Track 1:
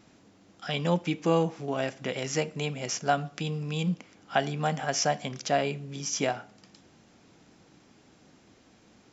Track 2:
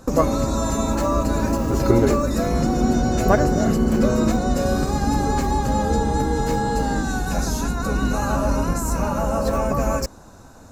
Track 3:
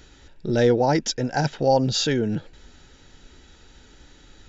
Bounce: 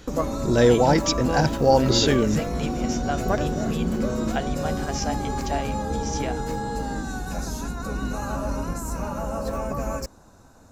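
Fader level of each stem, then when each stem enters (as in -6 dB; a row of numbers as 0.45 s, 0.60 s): -3.5 dB, -7.0 dB, +1.5 dB; 0.00 s, 0.00 s, 0.00 s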